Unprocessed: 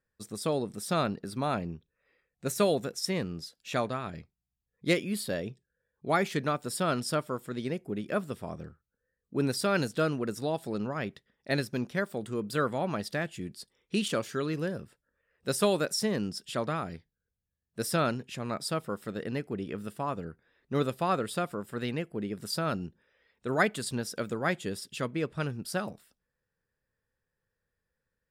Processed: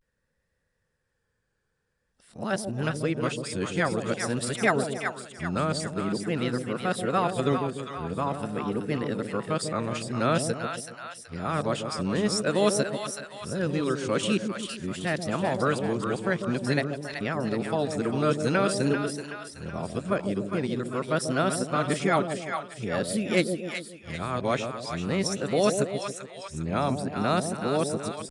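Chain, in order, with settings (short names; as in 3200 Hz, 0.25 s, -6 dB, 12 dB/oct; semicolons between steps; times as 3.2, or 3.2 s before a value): whole clip reversed; dynamic EQ 4700 Hz, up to -5 dB, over -52 dBFS, Q 3.8; in parallel at -2 dB: compressor, threshold -35 dBFS, peak gain reduction 14.5 dB; on the sum: downsampling 22050 Hz; on a send: split-band echo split 710 Hz, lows 0.141 s, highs 0.39 s, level -6 dB; on the sum: vibrato 0.48 Hz 71 cents; gain +1 dB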